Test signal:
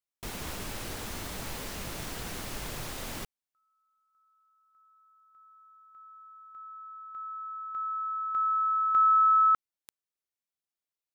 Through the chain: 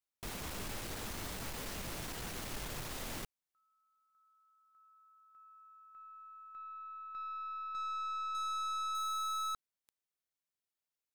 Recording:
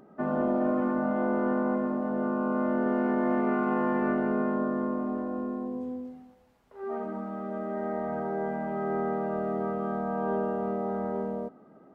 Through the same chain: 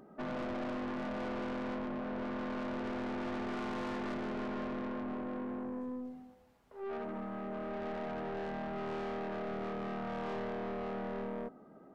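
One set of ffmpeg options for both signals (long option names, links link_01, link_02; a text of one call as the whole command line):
ffmpeg -i in.wav -af "aeval=exprs='(tanh(56.2*val(0)+0.25)-tanh(0.25))/56.2':channel_layout=same,volume=-1.5dB" out.wav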